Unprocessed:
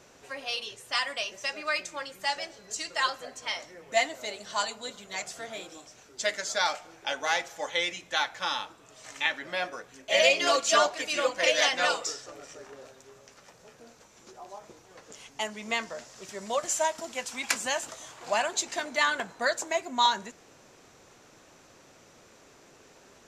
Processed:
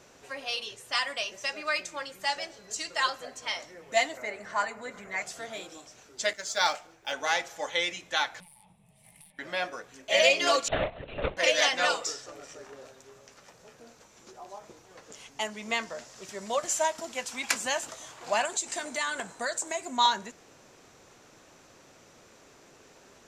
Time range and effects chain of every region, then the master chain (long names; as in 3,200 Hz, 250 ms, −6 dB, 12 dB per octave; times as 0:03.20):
0:04.17–0:05.22: high shelf with overshoot 2,600 Hz −8.5 dB, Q 3 + upward compression, threshold −38 dBFS
0:06.33–0:07.13: one scale factor per block 7 bits + multiband upward and downward expander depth 70%
0:08.40–0:09.39: phase distortion by the signal itself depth 0.59 ms + drawn EQ curve 120 Hz 0 dB, 190 Hz +10 dB, 290 Hz −23 dB, 540 Hz −15 dB, 850 Hz −8 dB, 1,400 Hz −30 dB, 2,100 Hz −9 dB, 6,800 Hz −24 dB, 9,800 Hz +7 dB, 14,000 Hz −17 dB + downward compressor 12 to 1, threshold −50 dBFS
0:10.68–0:11.37: running median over 41 samples + linear-prediction vocoder at 8 kHz whisper + high-shelf EQ 3,100 Hz +8.5 dB
0:18.45–0:19.97: parametric band 8,300 Hz +13.5 dB 0.54 octaves + downward compressor 2 to 1, threshold −31 dBFS
whole clip: no processing